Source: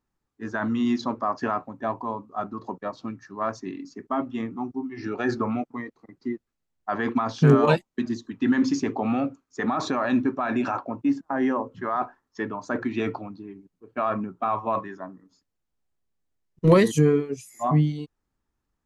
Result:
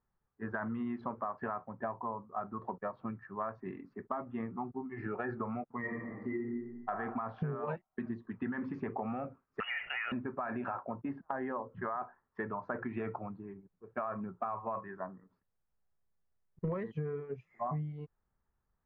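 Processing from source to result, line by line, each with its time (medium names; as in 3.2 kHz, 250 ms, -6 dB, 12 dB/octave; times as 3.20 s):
5.80–6.89 s: reverb throw, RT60 1.1 s, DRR -7.5 dB
9.60–10.12 s: frequency inversion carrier 3.1 kHz
whole clip: low-pass 1.9 kHz 24 dB/octave; peaking EQ 290 Hz -13 dB 0.41 oct; compression 10:1, threshold -32 dBFS; trim -1.5 dB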